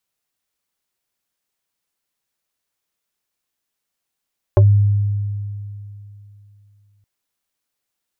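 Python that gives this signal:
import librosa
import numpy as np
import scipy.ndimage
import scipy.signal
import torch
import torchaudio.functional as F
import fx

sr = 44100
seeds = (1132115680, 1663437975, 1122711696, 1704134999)

y = fx.fm2(sr, length_s=2.47, level_db=-6, carrier_hz=102.0, ratio=4.71, index=1.2, index_s=0.12, decay_s=2.97, shape='exponential')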